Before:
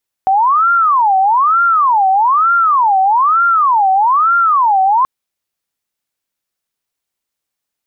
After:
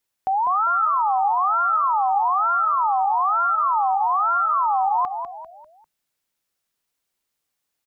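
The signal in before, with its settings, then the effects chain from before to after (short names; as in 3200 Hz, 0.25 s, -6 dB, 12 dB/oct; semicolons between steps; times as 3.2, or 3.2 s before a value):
siren wail 759–1390 Hz 1.1/s sine -8 dBFS 4.78 s
limiter -17.5 dBFS; on a send: frequency-shifting echo 0.198 s, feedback 39%, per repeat -42 Hz, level -8 dB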